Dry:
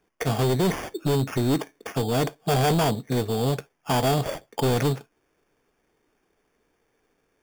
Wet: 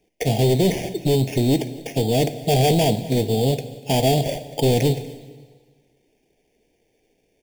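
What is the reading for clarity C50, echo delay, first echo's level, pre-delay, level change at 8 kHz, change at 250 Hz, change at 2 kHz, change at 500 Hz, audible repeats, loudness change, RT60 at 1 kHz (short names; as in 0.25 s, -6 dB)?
13.0 dB, 0.243 s, -21.5 dB, 5 ms, +4.5 dB, +4.5 dB, 0.0 dB, +5.0 dB, 1, +4.5 dB, 1.5 s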